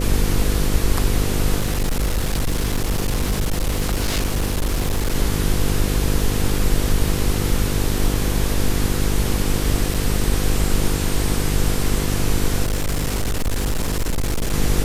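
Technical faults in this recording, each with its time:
mains buzz 50 Hz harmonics 10 −23 dBFS
0:01.59–0:05.15: clipping −16 dBFS
0:09.94–0:09.95: drop-out 5 ms
0:12.63–0:14.54: clipping −17 dBFS

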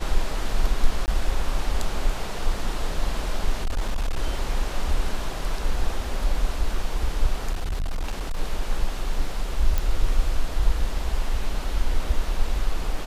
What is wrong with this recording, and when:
0:01.06–0:01.08: drop-out 19 ms
0:03.61–0:04.20: clipping −20 dBFS
0:07.52–0:08.40: clipping −22.5 dBFS
0:09.78: click

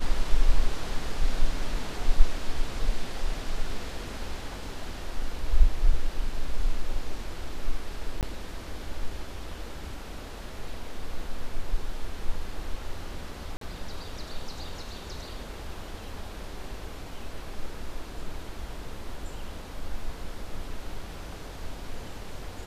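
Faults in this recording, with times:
0:08.21–0:08.23: drop-out 18 ms
0:13.57–0:13.61: drop-out 43 ms

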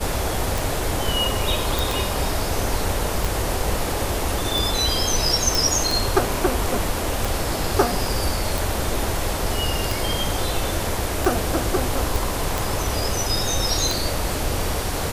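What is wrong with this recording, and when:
scratch tick 45 rpm
0:01.79: click
0:05.55: click
0:12.16: click

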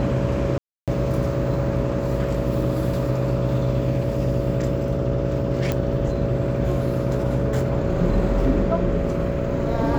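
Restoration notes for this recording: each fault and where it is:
mains buzz 60 Hz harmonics 11 −26 dBFS
whistle 560 Hz −28 dBFS
0:00.58–0:00.88: drop-out 297 ms
0:05.72: click −10 dBFS

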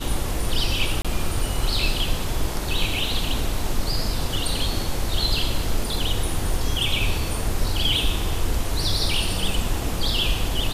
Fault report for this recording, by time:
0:01.02–0:01.05: drop-out 26 ms

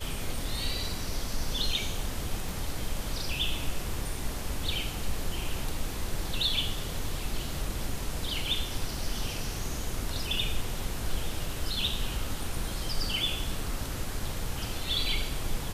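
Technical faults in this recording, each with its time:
0:02.49: click

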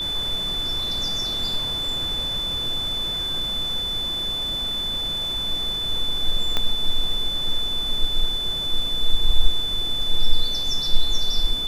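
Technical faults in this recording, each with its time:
whistle 3,500 Hz −24 dBFS
0:06.57: click −9 dBFS

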